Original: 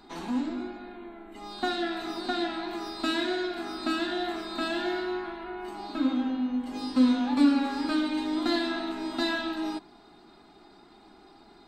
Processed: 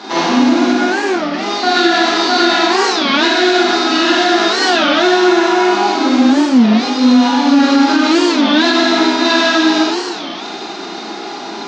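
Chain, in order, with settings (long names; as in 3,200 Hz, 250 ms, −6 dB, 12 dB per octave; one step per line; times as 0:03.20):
variable-slope delta modulation 32 kbit/s
high-pass filter 270 Hz 12 dB per octave
mains-hum notches 60/120/180/240/300/360 Hz
reversed playback
downward compressor 6 to 1, threshold −38 dBFS, peak gain reduction 17.5 dB
reversed playback
flanger 0.78 Hz, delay 9.6 ms, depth 6.2 ms, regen −66%
on a send: delay with a high-pass on its return 126 ms, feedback 82%, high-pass 2,800 Hz, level −10.5 dB
on the sum: four-comb reverb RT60 1.2 s, combs from 32 ms, DRR −5.5 dB
boost into a limiter +28.5 dB
wow of a warped record 33 1/3 rpm, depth 250 cents
level −1 dB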